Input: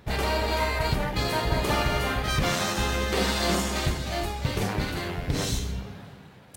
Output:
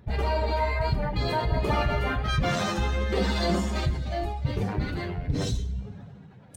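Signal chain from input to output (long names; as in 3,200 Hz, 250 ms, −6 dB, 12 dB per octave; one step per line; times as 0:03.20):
expanding power law on the bin magnitudes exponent 1.6
pitch vibrato 1.4 Hz 16 cents
coupled-rooms reverb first 0.77 s, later 2.7 s, DRR 15 dB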